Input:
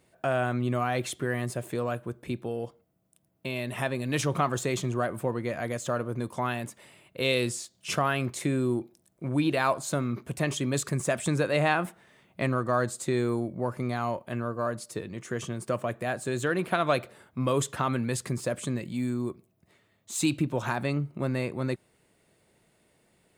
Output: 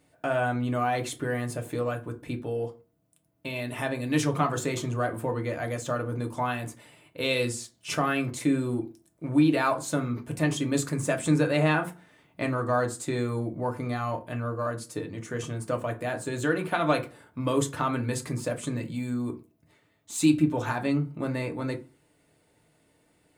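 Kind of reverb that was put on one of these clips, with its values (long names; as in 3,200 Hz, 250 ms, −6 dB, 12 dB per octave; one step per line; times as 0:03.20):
feedback delay network reverb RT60 0.3 s, low-frequency decay 1.3×, high-frequency decay 0.6×, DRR 3 dB
level −1.5 dB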